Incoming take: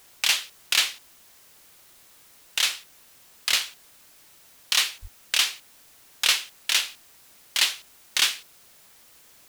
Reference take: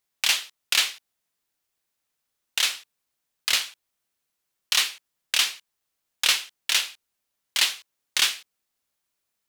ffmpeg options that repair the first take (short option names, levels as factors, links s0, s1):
-filter_complex "[0:a]asplit=3[s0][s1][s2];[s0]afade=t=out:st=5.01:d=0.02[s3];[s1]highpass=f=140:w=0.5412,highpass=f=140:w=1.3066,afade=t=in:st=5.01:d=0.02,afade=t=out:st=5.13:d=0.02[s4];[s2]afade=t=in:st=5.13:d=0.02[s5];[s3][s4][s5]amix=inputs=3:normalize=0,afwtdn=0.002"